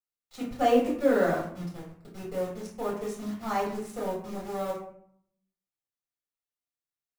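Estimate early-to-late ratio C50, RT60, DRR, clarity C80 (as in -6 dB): 5.0 dB, 0.60 s, -6.0 dB, 8.5 dB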